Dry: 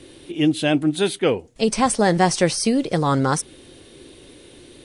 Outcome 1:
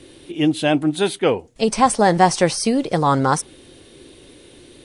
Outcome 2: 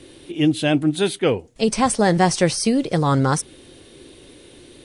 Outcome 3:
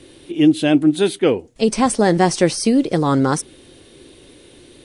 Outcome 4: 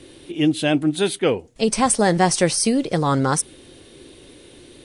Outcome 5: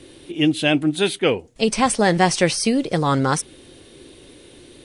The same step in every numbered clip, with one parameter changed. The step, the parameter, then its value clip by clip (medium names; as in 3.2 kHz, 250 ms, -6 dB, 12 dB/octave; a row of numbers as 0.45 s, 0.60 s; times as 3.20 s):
dynamic bell, frequency: 880 Hz, 100 Hz, 310 Hz, 9.4 kHz, 2.6 kHz